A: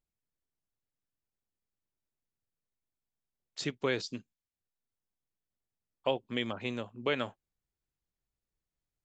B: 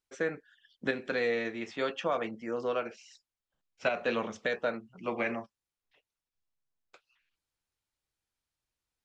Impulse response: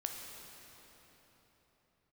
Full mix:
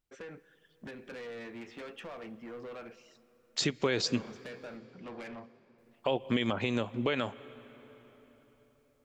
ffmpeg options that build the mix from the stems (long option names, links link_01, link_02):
-filter_complex "[0:a]dynaudnorm=framelen=210:gausssize=3:maxgain=11dB,volume=0.5dB,asplit=3[link_01][link_02][link_03];[link_01]atrim=end=4.77,asetpts=PTS-STARTPTS,afade=type=out:start_time=4.766:duration=0.004:curve=hsin[link_04];[link_02]atrim=start=4.77:end=5.78,asetpts=PTS-STARTPTS,volume=0[link_05];[link_03]atrim=start=5.78,asetpts=PTS-STARTPTS,afade=type=in:duration=0.004:curve=hsin[link_06];[link_04][link_05][link_06]concat=n=3:v=0:a=1,asplit=2[link_07][link_08];[link_08]volume=-22dB[link_09];[1:a]acompressor=threshold=-32dB:ratio=6,bass=frequency=250:gain=4,treble=frequency=4000:gain=-8,asoftclip=type=tanh:threshold=-37dB,volume=-4.5dB,asplit=2[link_10][link_11];[link_11]volume=-12.5dB[link_12];[2:a]atrim=start_sample=2205[link_13];[link_09][link_12]amix=inputs=2:normalize=0[link_14];[link_14][link_13]afir=irnorm=-1:irlink=0[link_15];[link_07][link_10][link_15]amix=inputs=3:normalize=0,alimiter=limit=-18dB:level=0:latency=1:release=167"